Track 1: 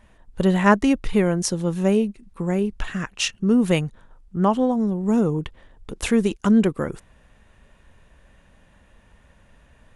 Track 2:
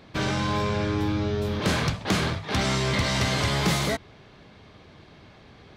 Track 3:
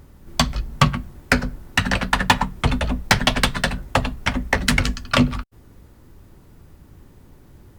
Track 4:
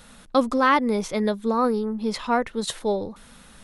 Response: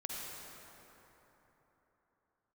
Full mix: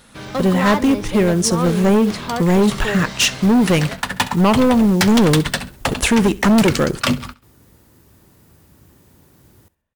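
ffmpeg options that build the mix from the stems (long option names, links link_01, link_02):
-filter_complex "[0:a]agate=range=-29dB:threshold=-44dB:ratio=16:detection=peak,dynaudnorm=framelen=100:gausssize=11:maxgain=15.5dB,volume=3dB,asplit=2[link_01][link_02];[link_02]volume=-22.5dB[link_03];[1:a]volume=-7dB[link_04];[2:a]highpass=71,highshelf=frequency=4500:gain=10,adelay=1900,volume=-1.5dB,asplit=2[link_05][link_06];[link_06]volume=-19.5dB[link_07];[3:a]asoftclip=type=tanh:threshold=-16.5dB,volume=0.5dB,asplit=2[link_08][link_09];[link_09]apad=whole_len=426964[link_10];[link_05][link_10]sidechaincompress=threshold=-39dB:ratio=8:attack=16:release=1150[link_11];[link_03][link_07]amix=inputs=2:normalize=0,aecho=0:1:67|134|201|268|335:1|0.35|0.122|0.0429|0.015[link_12];[link_01][link_04][link_11][link_08][link_12]amix=inputs=5:normalize=0,highpass=frequency=47:poles=1,asoftclip=type=hard:threshold=-10.5dB,acrusher=bits=6:mode=log:mix=0:aa=0.000001"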